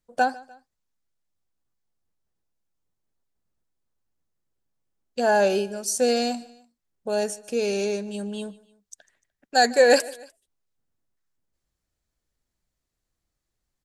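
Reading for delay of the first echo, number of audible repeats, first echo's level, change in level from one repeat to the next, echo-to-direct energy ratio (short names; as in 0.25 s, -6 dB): 0.149 s, 2, -21.5 dB, -6.5 dB, -20.5 dB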